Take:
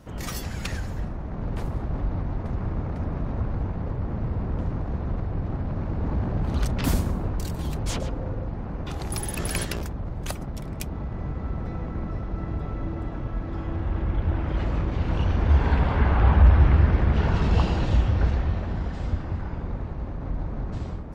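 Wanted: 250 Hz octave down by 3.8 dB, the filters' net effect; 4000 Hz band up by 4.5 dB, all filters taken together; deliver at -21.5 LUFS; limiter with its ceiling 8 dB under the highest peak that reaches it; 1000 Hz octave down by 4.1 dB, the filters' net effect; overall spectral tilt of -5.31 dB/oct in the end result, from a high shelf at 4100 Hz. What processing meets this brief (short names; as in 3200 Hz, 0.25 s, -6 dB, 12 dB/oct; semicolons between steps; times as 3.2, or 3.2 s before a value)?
bell 250 Hz -5.5 dB; bell 1000 Hz -5.5 dB; bell 4000 Hz +3.5 dB; high shelf 4100 Hz +4.5 dB; gain +8 dB; limiter -7.5 dBFS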